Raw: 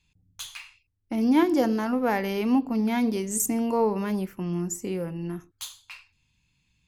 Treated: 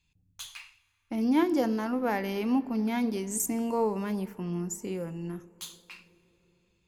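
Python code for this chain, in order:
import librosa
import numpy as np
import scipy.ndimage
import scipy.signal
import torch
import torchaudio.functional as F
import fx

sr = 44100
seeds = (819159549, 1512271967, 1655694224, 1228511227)

y = fx.rev_plate(x, sr, seeds[0], rt60_s=4.2, hf_ratio=0.45, predelay_ms=0, drr_db=19.5)
y = y * 10.0 ** (-4.0 / 20.0)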